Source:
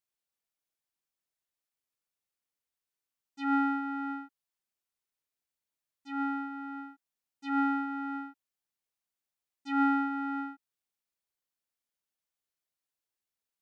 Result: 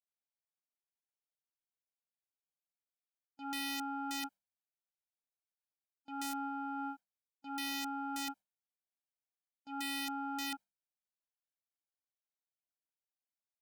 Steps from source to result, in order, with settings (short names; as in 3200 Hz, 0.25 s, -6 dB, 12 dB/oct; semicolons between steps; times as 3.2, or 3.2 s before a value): gate with hold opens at -40 dBFS; notches 50/100/150/200 Hz; comb 1.3 ms, depth 91%; reverse; compressor 10:1, threshold -43 dBFS, peak gain reduction 22.5 dB; reverse; bell 460 Hz +9 dB 2.5 oct; wrapped overs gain 34 dB; gain +1 dB